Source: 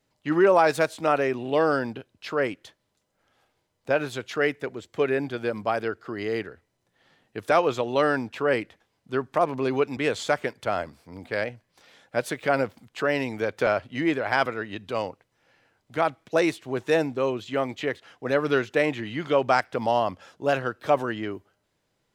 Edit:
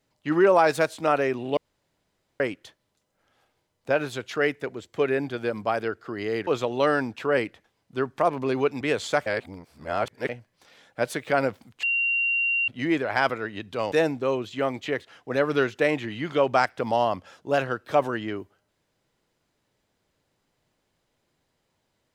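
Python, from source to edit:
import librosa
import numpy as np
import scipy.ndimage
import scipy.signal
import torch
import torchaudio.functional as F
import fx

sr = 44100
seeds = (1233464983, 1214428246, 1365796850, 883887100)

y = fx.edit(x, sr, fx.room_tone_fill(start_s=1.57, length_s=0.83),
    fx.cut(start_s=6.47, length_s=1.16),
    fx.reverse_span(start_s=10.42, length_s=1.03),
    fx.bleep(start_s=12.99, length_s=0.85, hz=2760.0, db=-21.0),
    fx.cut(start_s=15.08, length_s=1.79), tone=tone)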